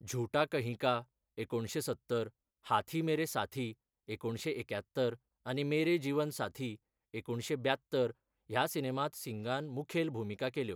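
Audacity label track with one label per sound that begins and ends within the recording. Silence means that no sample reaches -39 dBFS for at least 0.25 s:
1.380000	2.270000	sound
2.670000	3.710000	sound
4.090000	5.130000	sound
5.470000	6.730000	sound
7.140000	8.110000	sound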